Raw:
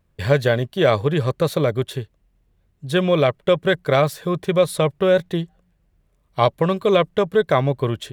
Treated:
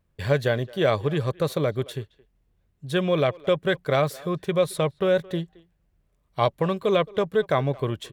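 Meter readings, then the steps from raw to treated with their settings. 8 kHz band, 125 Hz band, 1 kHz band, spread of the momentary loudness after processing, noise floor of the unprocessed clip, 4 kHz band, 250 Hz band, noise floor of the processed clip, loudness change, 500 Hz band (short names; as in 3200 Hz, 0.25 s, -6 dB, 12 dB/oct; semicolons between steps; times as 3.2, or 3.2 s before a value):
-5.0 dB, -5.0 dB, -5.0 dB, 9 LU, -65 dBFS, -5.0 dB, -5.0 dB, -69 dBFS, -5.0 dB, -5.0 dB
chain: speakerphone echo 0.22 s, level -21 dB; gain -5 dB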